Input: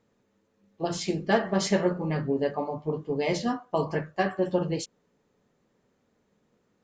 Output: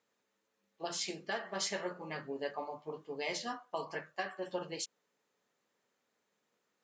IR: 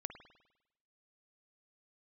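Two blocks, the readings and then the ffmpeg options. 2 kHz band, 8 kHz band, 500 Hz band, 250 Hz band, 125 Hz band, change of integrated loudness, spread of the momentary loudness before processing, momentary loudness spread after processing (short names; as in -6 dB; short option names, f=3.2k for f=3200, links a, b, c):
-7.0 dB, -3.5 dB, -13.0 dB, -18.0 dB, -21.5 dB, -11.5 dB, 7 LU, 7 LU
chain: -af "highpass=f=1.4k:p=1,alimiter=limit=-22.5dB:level=0:latency=1:release=372,volume=-2dB"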